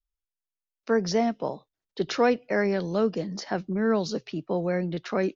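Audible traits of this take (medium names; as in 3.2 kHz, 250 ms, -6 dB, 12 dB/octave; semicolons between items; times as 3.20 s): noise floor -91 dBFS; spectral tilt -5.0 dB/octave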